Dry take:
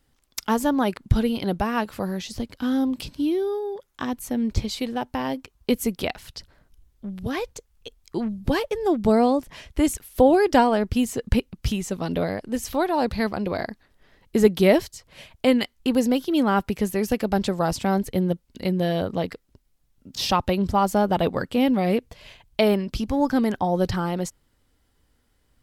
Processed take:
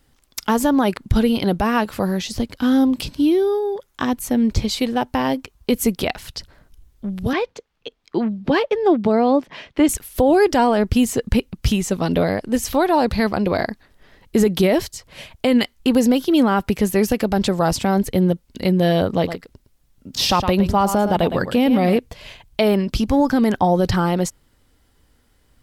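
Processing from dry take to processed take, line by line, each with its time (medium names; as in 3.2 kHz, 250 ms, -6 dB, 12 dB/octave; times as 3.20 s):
7.33–9.89 s: three-band isolator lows -21 dB, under 150 Hz, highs -21 dB, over 4.6 kHz
19.11–21.97 s: delay 111 ms -12 dB
whole clip: peak limiter -14 dBFS; trim +7 dB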